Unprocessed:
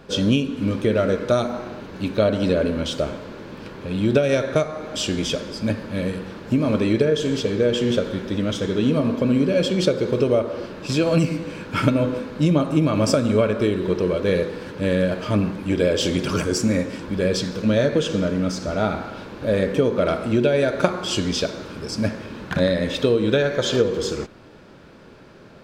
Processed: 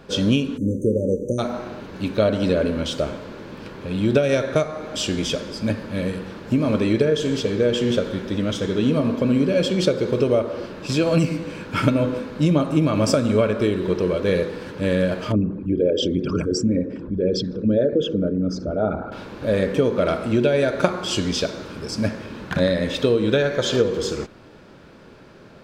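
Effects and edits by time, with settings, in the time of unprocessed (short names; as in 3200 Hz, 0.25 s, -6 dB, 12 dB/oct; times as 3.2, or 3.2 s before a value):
0.58–1.39 spectral delete 590–5900 Hz
15.32–19.12 formant sharpening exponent 2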